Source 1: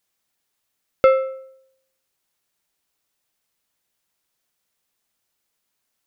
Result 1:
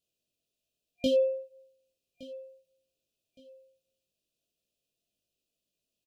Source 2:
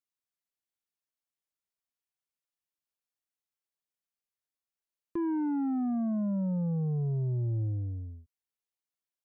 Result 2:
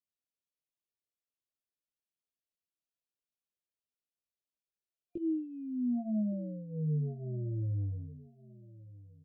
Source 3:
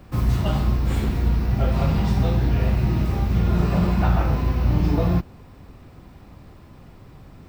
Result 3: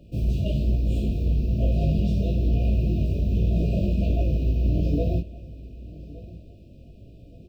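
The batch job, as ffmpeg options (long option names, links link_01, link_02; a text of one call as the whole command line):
ffmpeg -i in.wav -af "aeval=exprs='0.224*(abs(mod(val(0)/0.224+3,4)-2)-1)':channel_layout=same,highshelf=frequency=4400:gain=-10,afftfilt=real='re*(1-between(b*sr/4096,710,2400))':imag='im*(1-between(b*sr/4096,710,2400))':win_size=4096:overlap=0.75,flanger=delay=18.5:depth=2.3:speed=1.1,aecho=1:1:1166|2332:0.112|0.0325" out.wav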